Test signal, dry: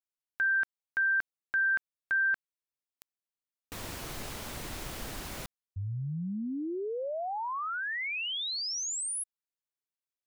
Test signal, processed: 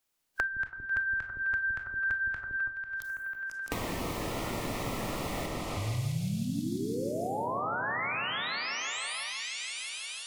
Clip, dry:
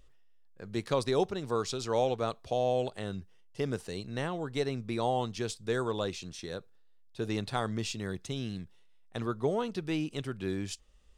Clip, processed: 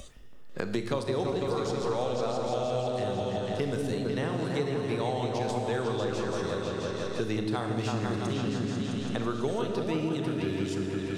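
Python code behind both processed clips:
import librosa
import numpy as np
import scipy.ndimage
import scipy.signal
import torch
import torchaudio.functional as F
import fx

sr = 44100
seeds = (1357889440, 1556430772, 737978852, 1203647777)

y = fx.echo_opening(x, sr, ms=165, hz=400, octaves=2, feedback_pct=70, wet_db=0)
y = fx.rev_schroeder(y, sr, rt60_s=1.1, comb_ms=25, drr_db=5.5)
y = fx.noise_reduce_blind(y, sr, reduce_db=13)
y = fx.band_squash(y, sr, depth_pct=100)
y = F.gain(torch.from_numpy(y), -2.5).numpy()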